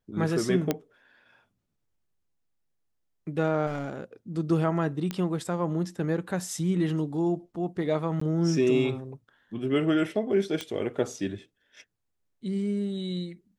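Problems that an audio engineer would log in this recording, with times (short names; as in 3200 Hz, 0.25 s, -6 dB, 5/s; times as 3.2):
0.71 pop -11 dBFS
3.66–4.01 clipped -27 dBFS
5.11 pop -17 dBFS
8.2–8.21 gap 14 ms
10.61 pop -18 dBFS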